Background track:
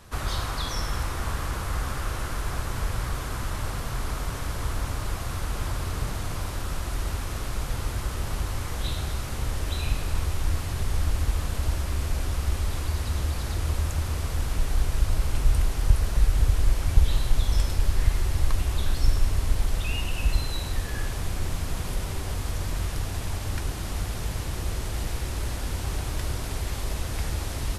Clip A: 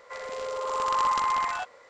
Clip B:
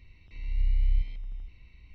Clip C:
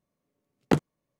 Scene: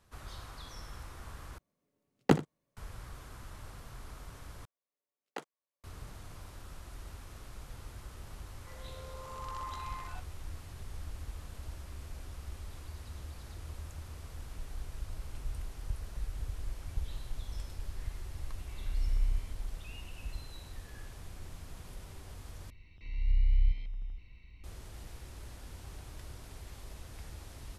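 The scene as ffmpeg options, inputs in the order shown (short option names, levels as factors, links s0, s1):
-filter_complex "[3:a]asplit=2[s0][s1];[2:a]asplit=2[s2][s3];[0:a]volume=0.133[s4];[s0]aecho=1:1:79:0.168[s5];[s1]highpass=620[s6];[s4]asplit=4[s7][s8][s9][s10];[s7]atrim=end=1.584[s11];[s5]atrim=end=1.19,asetpts=PTS-STARTPTS,volume=0.794[s12];[s8]atrim=start=2.766:end=4.654[s13];[s6]atrim=end=1.19,asetpts=PTS-STARTPTS,volume=0.224[s14];[s9]atrim=start=5.836:end=22.704[s15];[s3]atrim=end=1.94,asetpts=PTS-STARTPTS,volume=0.841[s16];[s10]atrim=start=24.636[s17];[1:a]atrim=end=1.89,asetpts=PTS-STARTPTS,volume=0.133,afade=t=in:d=0.004:c=hsin,afade=t=out:st=1.886:d=0.004:c=hsin,adelay=8560[s18];[s2]atrim=end=1.94,asetpts=PTS-STARTPTS,volume=0.501,afade=t=in:d=0.004:c=hsin,afade=t=out:st=1.936:d=0.004:c=hsin,adelay=18370[s19];[s11][s12]acrossfade=d=0.004:c1=hsin:c2=hsin[s20];[s20][s13]acrossfade=d=0.004:c1=hsin:c2=hsin[s21];[s21][s14]acrossfade=d=0.004:c1=hsin:c2=hsin[s22];[s22][s15]acrossfade=d=0.004:c1=hsin:c2=hsin[s23];[s23][s16]acrossfade=d=0.004:c1=hsin:c2=hsin[s24];[s24][s17]acrossfade=d=0.004:c1=hsin:c2=hsin[s25];[s25][s18][s19]amix=inputs=3:normalize=0"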